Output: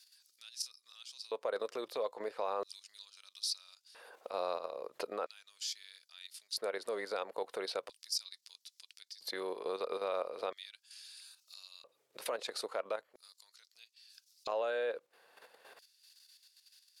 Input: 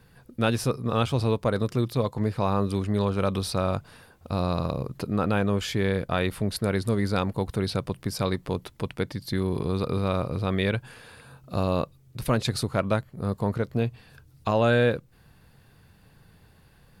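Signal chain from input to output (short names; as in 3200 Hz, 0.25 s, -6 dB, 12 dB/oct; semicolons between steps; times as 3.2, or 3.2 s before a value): weighting filter A; compressor 2:1, threshold -48 dBFS, peak gain reduction 15.5 dB; limiter -29.5 dBFS, peak gain reduction 7 dB; level quantiser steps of 9 dB; LFO high-pass square 0.38 Hz 500–5100 Hz; gain +5.5 dB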